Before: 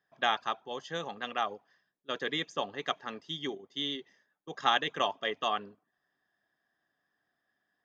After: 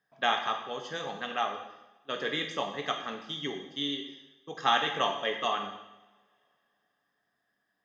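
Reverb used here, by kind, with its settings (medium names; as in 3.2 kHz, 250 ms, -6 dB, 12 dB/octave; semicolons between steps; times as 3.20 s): two-slope reverb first 0.9 s, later 3.1 s, from -28 dB, DRR 2.5 dB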